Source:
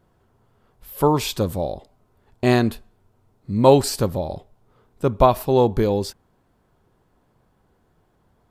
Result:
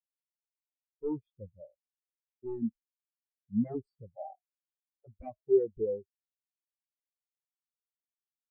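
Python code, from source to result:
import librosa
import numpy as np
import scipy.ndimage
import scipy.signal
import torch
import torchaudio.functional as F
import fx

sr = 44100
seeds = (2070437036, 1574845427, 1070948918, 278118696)

y = fx.highpass_res(x, sr, hz=730.0, q=4.9, at=(4.15, 5.06), fade=0.02)
y = 10.0 ** (-13.0 / 20.0) * (np.abs((y / 10.0 ** (-13.0 / 20.0) + 3.0) % 4.0 - 2.0) - 1.0)
y = fx.spectral_expand(y, sr, expansion=4.0)
y = y * 10.0 ** (-2.5 / 20.0)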